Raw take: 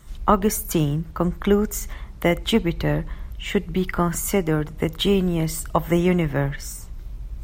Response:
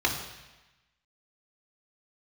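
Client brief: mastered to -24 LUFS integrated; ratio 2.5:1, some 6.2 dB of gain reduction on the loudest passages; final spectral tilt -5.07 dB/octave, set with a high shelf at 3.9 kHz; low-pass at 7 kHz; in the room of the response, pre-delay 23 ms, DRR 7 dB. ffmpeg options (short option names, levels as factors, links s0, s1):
-filter_complex "[0:a]lowpass=7000,highshelf=f=3900:g=3,acompressor=threshold=0.0891:ratio=2.5,asplit=2[s0][s1];[1:a]atrim=start_sample=2205,adelay=23[s2];[s1][s2]afir=irnorm=-1:irlink=0,volume=0.112[s3];[s0][s3]amix=inputs=2:normalize=0,volume=1.26"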